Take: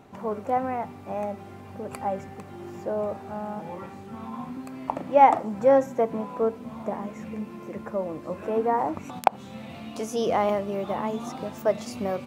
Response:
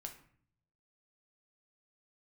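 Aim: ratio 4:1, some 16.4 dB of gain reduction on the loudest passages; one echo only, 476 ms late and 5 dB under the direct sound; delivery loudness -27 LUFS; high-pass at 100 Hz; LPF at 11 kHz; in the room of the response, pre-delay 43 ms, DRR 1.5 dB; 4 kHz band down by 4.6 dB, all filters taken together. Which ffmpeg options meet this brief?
-filter_complex "[0:a]highpass=100,lowpass=11000,equalizer=f=4000:t=o:g=-6.5,acompressor=threshold=0.0282:ratio=4,aecho=1:1:476:0.562,asplit=2[s0][s1];[1:a]atrim=start_sample=2205,adelay=43[s2];[s1][s2]afir=irnorm=-1:irlink=0,volume=1.33[s3];[s0][s3]amix=inputs=2:normalize=0,volume=2"

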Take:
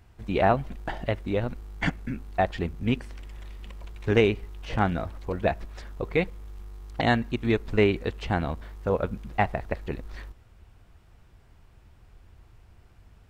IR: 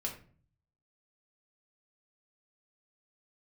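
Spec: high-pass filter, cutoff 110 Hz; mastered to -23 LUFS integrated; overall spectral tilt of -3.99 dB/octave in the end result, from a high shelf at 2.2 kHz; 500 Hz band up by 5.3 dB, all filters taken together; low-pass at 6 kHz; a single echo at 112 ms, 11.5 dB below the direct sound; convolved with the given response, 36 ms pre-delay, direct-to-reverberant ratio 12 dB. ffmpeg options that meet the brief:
-filter_complex "[0:a]highpass=110,lowpass=6000,equalizer=f=500:t=o:g=7,highshelf=f=2200:g=-6.5,aecho=1:1:112:0.266,asplit=2[s0][s1];[1:a]atrim=start_sample=2205,adelay=36[s2];[s1][s2]afir=irnorm=-1:irlink=0,volume=0.224[s3];[s0][s3]amix=inputs=2:normalize=0,volume=1.19"

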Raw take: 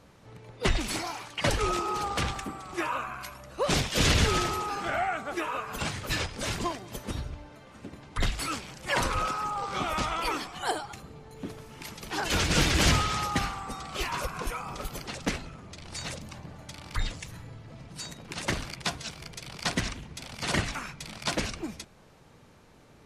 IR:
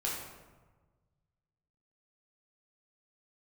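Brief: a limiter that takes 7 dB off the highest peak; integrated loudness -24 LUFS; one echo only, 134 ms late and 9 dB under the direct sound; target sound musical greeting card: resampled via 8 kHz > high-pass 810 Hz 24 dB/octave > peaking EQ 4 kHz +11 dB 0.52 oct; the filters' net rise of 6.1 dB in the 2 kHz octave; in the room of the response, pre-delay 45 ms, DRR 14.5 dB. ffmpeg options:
-filter_complex "[0:a]equalizer=f=2000:t=o:g=6.5,alimiter=limit=0.141:level=0:latency=1,aecho=1:1:134:0.355,asplit=2[s0][s1];[1:a]atrim=start_sample=2205,adelay=45[s2];[s1][s2]afir=irnorm=-1:irlink=0,volume=0.112[s3];[s0][s3]amix=inputs=2:normalize=0,aresample=8000,aresample=44100,highpass=f=810:w=0.5412,highpass=f=810:w=1.3066,equalizer=f=4000:t=o:w=0.52:g=11,volume=1.88"

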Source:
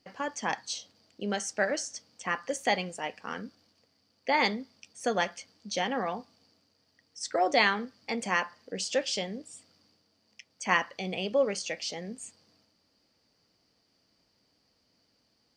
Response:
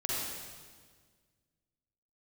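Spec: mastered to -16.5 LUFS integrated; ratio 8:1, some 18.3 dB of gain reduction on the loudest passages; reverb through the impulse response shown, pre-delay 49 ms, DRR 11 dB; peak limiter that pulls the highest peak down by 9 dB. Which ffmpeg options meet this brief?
-filter_complex "[0:a]acompressor=threshold=0.01:ratio=8,alimiter=level_in=2.99:limit=0.0631:level=0:latency=1,volume=0.335,asplit=2[s0][s1];[1:a]atrim=start_sample=2205,adelay=49[s2];[s1][s2]afir=irnorm=-1:irlink=0,volume=0.141[s3];[s0][s3]amix=inputs=2:normalize=0,volume=29.9"

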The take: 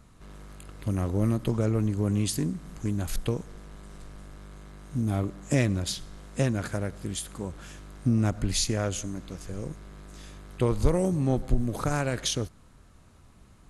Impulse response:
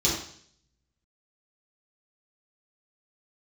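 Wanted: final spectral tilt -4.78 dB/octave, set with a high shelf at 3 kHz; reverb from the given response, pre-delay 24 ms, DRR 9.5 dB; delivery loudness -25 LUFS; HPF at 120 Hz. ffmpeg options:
-filter_complex "[0:a]highpass=120,highshelf=f=3000:g=4,asplit=2[s0][s1];[1:a]atrim=start_sample=2205,adelay=24[s2];[s1][s2]afir=irnorm=-1:irlink=0,volume=0.0891[s3];[s0][s3]amix=inputs=2:normalize=0,volume=1.41"

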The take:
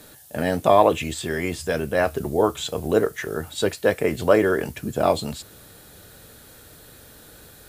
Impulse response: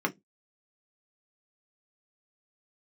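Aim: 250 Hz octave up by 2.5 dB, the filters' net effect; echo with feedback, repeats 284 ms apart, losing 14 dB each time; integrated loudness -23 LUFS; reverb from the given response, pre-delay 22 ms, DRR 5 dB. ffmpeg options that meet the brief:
-filter_complex "[0:a]equalizer=f=250:t=o:g=3.5,aecho=1:1:284|568:0.2|0.0399,asplit=2[s0][s1];[1:a]atrim=start_sample=2205,adelay=22[s2];[s1][s2]afir=irnorm=-1:irlink=0,volume=0.2[s3];[s0][s3]amix=inputs=2:normalize=0,volume=0.708"

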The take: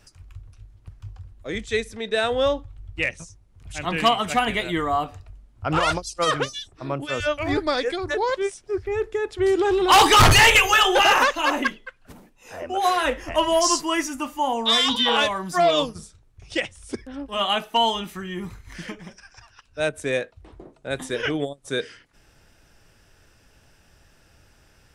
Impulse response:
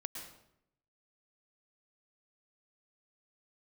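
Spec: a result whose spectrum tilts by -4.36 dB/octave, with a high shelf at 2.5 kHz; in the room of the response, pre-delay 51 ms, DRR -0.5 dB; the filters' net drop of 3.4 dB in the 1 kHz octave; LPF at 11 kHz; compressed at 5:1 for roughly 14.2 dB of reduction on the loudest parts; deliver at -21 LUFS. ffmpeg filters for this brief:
-filter_complex "[0:a]lowpass=11000,equalizer=f=1000:t=o:g=-3.5,highshelf=f=2500:g=-6,acompressor=threshold=0.0355:ratio=5,asplit=2[s0][s1];[1:a]atrim=start_sample=2205,adelay=51[s2];[s1][s2]afir=irnorm=-1:irlink=0,volume=1.26[s3];[s0][s3]amix=inputs=2:normalize=0,volume=2.82"

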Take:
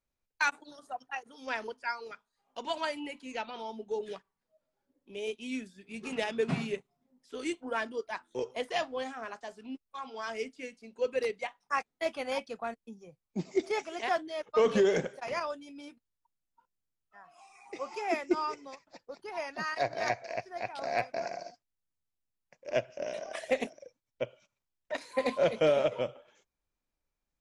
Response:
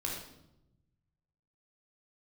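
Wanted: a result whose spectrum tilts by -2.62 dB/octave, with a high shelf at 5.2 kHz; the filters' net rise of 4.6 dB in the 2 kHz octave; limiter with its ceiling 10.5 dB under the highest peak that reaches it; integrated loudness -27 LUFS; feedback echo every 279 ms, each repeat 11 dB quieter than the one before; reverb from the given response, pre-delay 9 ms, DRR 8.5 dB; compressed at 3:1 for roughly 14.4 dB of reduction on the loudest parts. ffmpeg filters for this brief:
-filter_complex "[0:a]equalizer=f=2000:t=o:g=7,highshelf=f=5200:g=-8.5,acompressor=threshold=0.00891:ratio=3,alimiter=level_in=3.16:limit=0.0631:level=0:latency=1,volume=0.316,aecho=1:1:279|558|837:0.282|0.0789|0.0221,asplit=2[s0][s1];[1:a]atrim=start_sample=2205,adelay=9[s2];[s1][s2]afir=irnorm=-1:irlink=0,volume=0.266[s3];[s0][s3]amix=inputs=2:normalize=0,volume=7.94"

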